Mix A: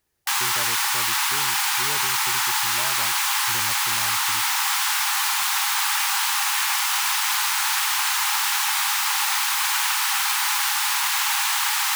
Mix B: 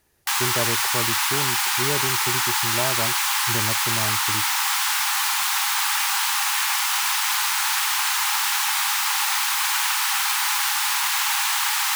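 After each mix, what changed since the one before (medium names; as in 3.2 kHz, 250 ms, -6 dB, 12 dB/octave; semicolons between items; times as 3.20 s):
speech +11.0 dB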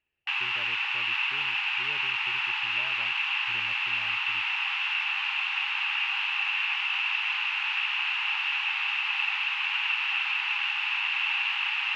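speech -9.5 dB; master: add four-pole ladder low-pass 2.8 kHz, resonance 85%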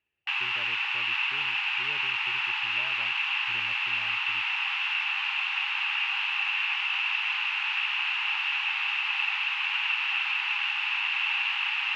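master: add high-pass 62 Hz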